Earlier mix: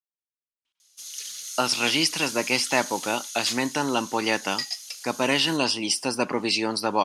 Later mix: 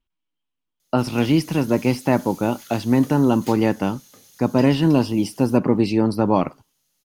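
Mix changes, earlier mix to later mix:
speech: entry -0.65 s; master: remove weighting filter ITU-R 468

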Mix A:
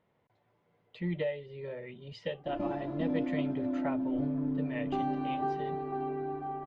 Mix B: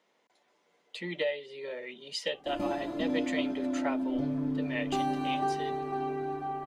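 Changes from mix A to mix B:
speech: add HPF 230 Hz 24 dB/oct; master: remove tape spacing loss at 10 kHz 34 dB

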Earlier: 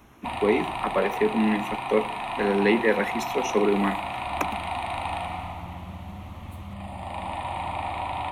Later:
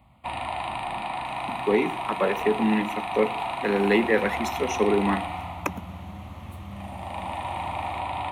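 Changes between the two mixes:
speech: entry +1.25 s; master: add HPF 49 Hz

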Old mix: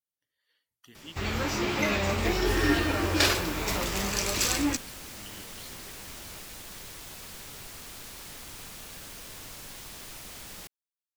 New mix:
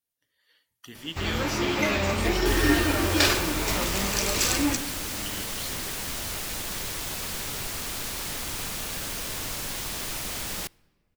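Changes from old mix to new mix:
speech +9.0 dB; second sound +10.5 dB; reverb: on, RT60 1.8 s

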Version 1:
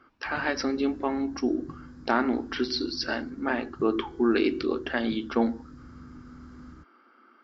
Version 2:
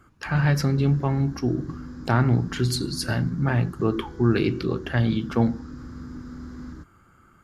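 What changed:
speech: remove brick-wall FIR band-pass 220–5900 Hz; background +8.5 dB

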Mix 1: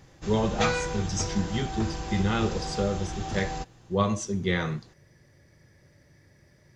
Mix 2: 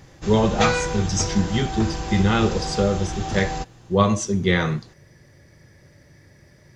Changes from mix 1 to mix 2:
speech +7.0 dB; background +5.5 dB

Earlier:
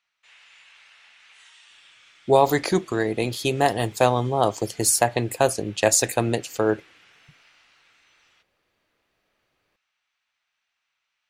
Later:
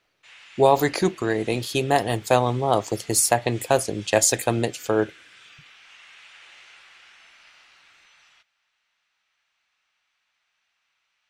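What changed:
speech: entry -1.70 s; background +4.5 dB

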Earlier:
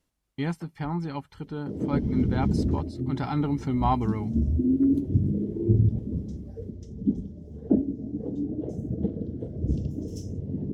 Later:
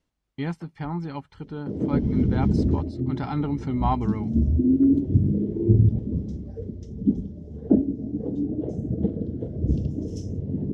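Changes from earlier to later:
background +3.5 dB; master: add air absorption 63 m

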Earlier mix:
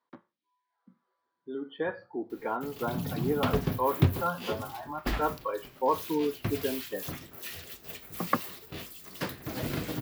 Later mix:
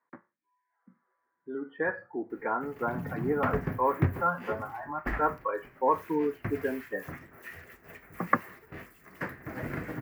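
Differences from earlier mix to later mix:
background -3.0 dB; master: add resonant high shelf 2600 Hz -11.5 dB, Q 3

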